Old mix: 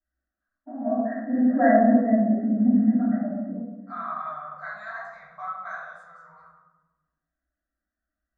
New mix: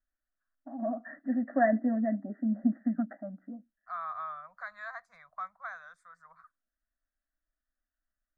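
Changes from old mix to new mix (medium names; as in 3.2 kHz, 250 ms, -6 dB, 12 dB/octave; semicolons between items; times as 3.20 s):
first voice +7.5 dB; reverb: off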